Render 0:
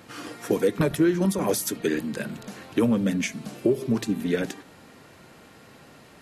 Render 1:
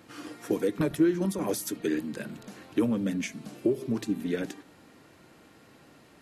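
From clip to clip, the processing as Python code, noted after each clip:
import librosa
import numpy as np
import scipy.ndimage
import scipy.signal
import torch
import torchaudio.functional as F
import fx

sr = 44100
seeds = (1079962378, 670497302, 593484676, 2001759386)

y = fx.peak_eq(x, sr, hz=310.0, db=6.0, octaves=0.36)
y = y * librosa.db_to_amplitude(-6.5)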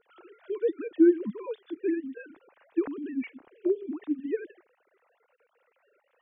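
y = fx.sine_speech(x, sr)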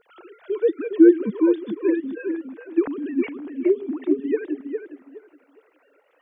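y = fx.echo_tape(x, sr, ms=413, feedback_pct=24, wet_db=-5, lp_hz=2000.0, drive_db=8.0, wow_cents=33)
y = y * librosa.db_to_amplitude(7.0)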